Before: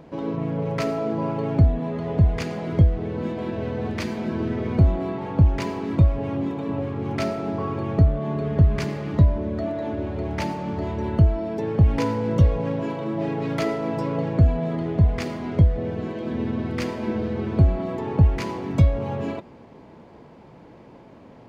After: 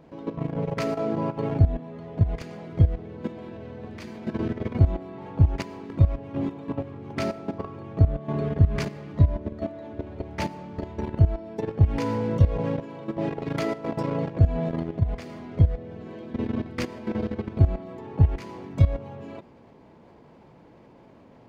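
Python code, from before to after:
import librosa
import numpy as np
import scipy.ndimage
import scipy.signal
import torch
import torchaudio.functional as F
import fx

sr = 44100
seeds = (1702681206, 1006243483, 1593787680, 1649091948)

y = fx.level_steps(x, sr, step_db=13)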